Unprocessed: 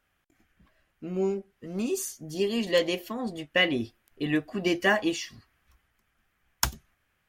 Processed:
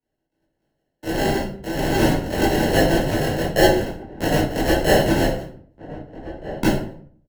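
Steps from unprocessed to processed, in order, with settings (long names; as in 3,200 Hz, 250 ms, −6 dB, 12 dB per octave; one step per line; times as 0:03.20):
one scale factor per block 3 bits
high-pass filter 680 Hz 12 dB per octave
noise gate −55 dBFS, range −36 dB
high-shelf EQ 8,600 Hz +11 dB
in parallel at 0 dB: downward compressor, threshold −35 dBFS, peak gain reduction 20 dB
on the sum: decimation without filtering 37×
soft clipping −13 dBFS, distortion −13 dB
slap from a distant wall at 270 metres, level −21 dB
convolution reverb RT60 0.50 s, pre-delay 15 ms, DRR −11 dB
multiband upward and downward compressor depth 40%
level −1.5 dB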